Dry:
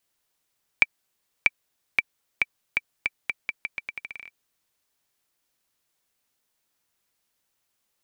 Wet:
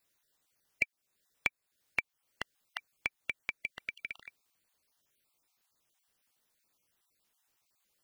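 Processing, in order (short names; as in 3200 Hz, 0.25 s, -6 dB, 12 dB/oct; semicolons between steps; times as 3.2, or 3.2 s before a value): random spectral dropouts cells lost 26%; compressor 2:1, threshold -35 dBFS, peak gain reduction 12 dB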